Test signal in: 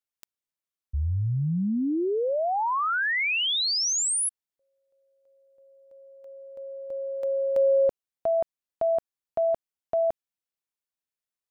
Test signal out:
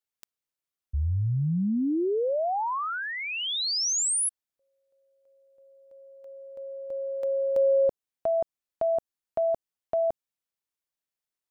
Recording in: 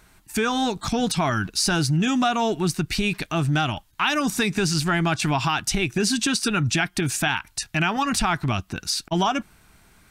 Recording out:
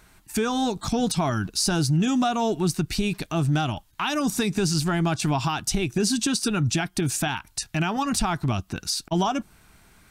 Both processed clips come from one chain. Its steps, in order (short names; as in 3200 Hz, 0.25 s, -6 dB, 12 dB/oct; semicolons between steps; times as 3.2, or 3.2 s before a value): dynamic EQ 2000 Hz, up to -8 dB, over -39 dBFS, Q 0.84